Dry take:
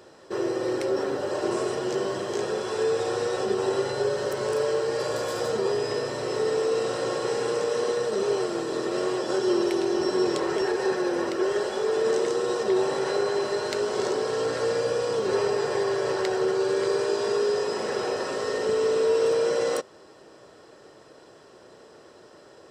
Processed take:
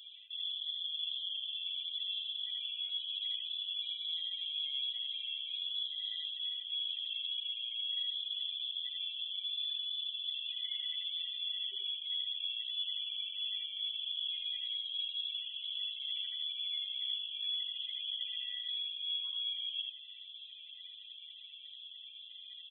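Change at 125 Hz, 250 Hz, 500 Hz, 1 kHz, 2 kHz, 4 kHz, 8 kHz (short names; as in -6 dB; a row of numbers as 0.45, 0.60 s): under -40 dB, under -40 dB, under -40 dB, under -40 dB, -19.0 dB, +5.5 dB, under -40 dB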